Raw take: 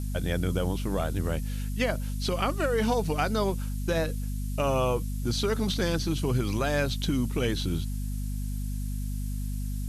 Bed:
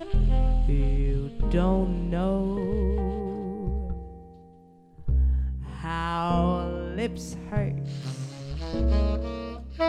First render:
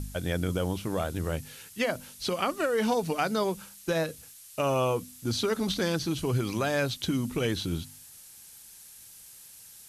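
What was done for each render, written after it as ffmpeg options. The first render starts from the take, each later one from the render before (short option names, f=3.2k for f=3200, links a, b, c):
-af "bandreject=f=50:t=h:w=4,bandreject=f=100:t=h:w=4,bandreject=f=150:t=h:w=4,bandreject=f=200:t=h:w=4,bandreject=f=250:t=h:w=4"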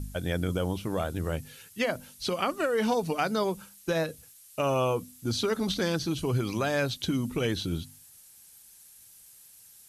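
-af "afftdn=nr=6:nf=-50"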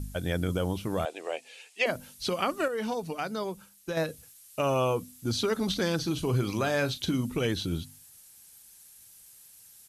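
-filter_complex "[0:a]asettb=1/sr,asplit=3[a][b][c];[a]atrim=end=1.054[d];[b]atrim=start=1.05:end=1.86,asetpts=PTS-STARTPTS,afade=t=in:d=0.004:c=qsin,afade=t=out:st=0.806:d=0.004:c=qsin,highpass=f=410:w=0.5412,highpass=f=410:w=1.3066,equalizer=f=710:t=q:w=4:g=8,equalizer=f=1.4k:t=q:w=4:g=-9,equalizer=f=2.5k:t=q:w=4:g=9,equalizer=f=6k:t=q:w=4:g=-3,lowpass=f=8.4k:w=0.5412,lowpass=f=8.4k:w=1.3066[e];[c]atrim=start=1.856[f];[d][e]acrossfade=d=0.004:c1=hsin:c2=qsin[g];[g][f]acrossfade=d=0.004:c1=qsin:c2=hsin,asplit=3[h][i][j];[h]afade=t=out:st=5.98:d=0.02[k];[i]asplit=2[l][m];[m]adelay=39,volume=-12dB[n];[l][n]amix=inputs=2:normalize=0,afade=t=in:st=5.98:d=0.02,afade=t=out:st=7.24:d=0.02[o];[j]afade=t=in:st=7.24:d=0.02[p];[k][o][p]amix=inputs=3:normalize=0,asplit=3[q][r][s];[q]atrim=end=2.682[t];[r]atrim=start=2.678:end=3.972,asetpts=PTS-STARTPTS,volume=-5.5dB[u];[s]atrim=start=3.968[v];[t][u]acrossfade=d=0.004:c1=hsin:c2=hsin[w];[w][v]acrossfade=d=0.004:c1=hsin:c2=hsin"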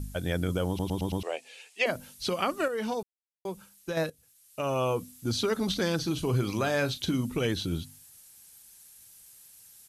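-filter_complex "[0:a]asplit=9[a][b][c][d][e][f][g][h][i];[a]atrim=end=0.792[j];[b]atrim=start=0.678:end=0.792[k];[c]atrim=start=0.678:end=0.792[l];[d]atrim=start=0.678:end=0.792[m];[e]atrim=start=0.678:end=0.792[n];[f]atrim=start=1.228:end=3.03,asetpts=PTS-STARTPTS,afade=t=out:st=1.798:d=0.004:c=hsin[o];[g]atrim=start=3.03:end=3.45,asetpts=PTS-STARTPTS,volume=0[p];[h]atrim=start=3.45:end=4.1,asetpts=PTS-STARTPTS,afade=t=in:d=0.004:c=hsin,afade=t=out:st=0.646:d=0.004:c=hsin:silence=0.16788[q];[i]atrim=start=4.1,asetpts=PTS-STARTPTS,afade=t=in:d=0.91:silence=0.16788[r];[j][k]acrossfade=d=0.004:c1=hsin:c2=hsin[s];[s][l]acrossfade=d=0.004:c1=hsin:c2=hsin[t];[t][m]acrossfade=d=0.004:c1=hsin:c2=hsin[u];[u][n]acrossfade=d=0.004:c1=hsin:c2=hsin[v];[o][p][q][r]concat=n=4:v=0:a=1[w];[v][w]acrossfade=d=0.004:c1=hsin:c2=hsin"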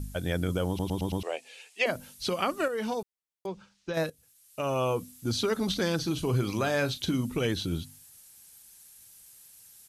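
-filter_complex "[0:a]asettb=1/sr,asplit=3[a][b][c];[a]atrim=end=3.464[d];[b]atrim=start=3.46:end=3.94,asetpts=PTS-STARTPTS,afade=t=in:d=0.004:c=qsin,afade=t=out:st=0.476:d=0.004:c=qsin,lowpass=f=5.6k:w=0.5412,lowpass=f=5.6k:w=1.3066[e];[c]atrim=start=3.936[f];[d][e]acrossfade=d=0.004:c1=hsin:c2=qsin[g];[g][f]acrossfade=d=0.004:c1=qsin:c2=hsin"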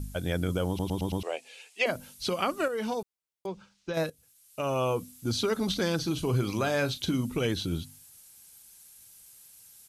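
-af "bandreject=f=1.8k:w=19"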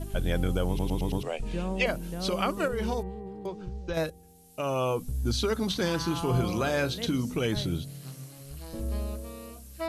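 -filter_complex "[1:a]volume=-9dB[a];[0:a][a]amix=inputs=2:normalize=0"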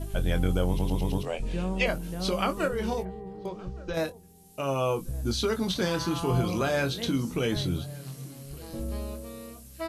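-filter_complex "[0:a]asplit=2[a][b];[b]adelay=22,volume=-9dB[c];[a][c]amix=inputs=2:normalize=0,asplit=2[d][e];[e]adelay=1166,volume=-21dB,highshelf=f=4k:g=-26.2[f];[d][f]amix=inputs=2:normalize=0"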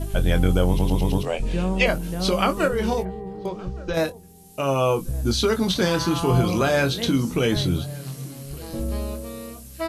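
-af "volume=6.5dB"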